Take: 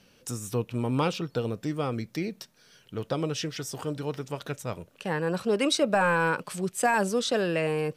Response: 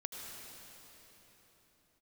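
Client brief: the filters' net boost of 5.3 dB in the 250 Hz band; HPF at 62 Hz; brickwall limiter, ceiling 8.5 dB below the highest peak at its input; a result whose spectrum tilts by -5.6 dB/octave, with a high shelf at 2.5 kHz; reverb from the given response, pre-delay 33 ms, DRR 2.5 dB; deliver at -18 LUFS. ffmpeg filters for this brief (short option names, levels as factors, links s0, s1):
-filter_complex "[0:a]highpass=62,equalizer=f=250:t=o:g=7,highshelf=f=2500:g=-3,alimiter=limit=0.1:level=0:latency=1,asplit=2[s0][s1];[1:a]atrim=start_sample=2205,adelay=33[s2];[s1][s2]afir=irnorm=-1:irlink=0,volume=0.794[s3];[s0][s3]amix=inputs=2:normalize=0,volume=3.35"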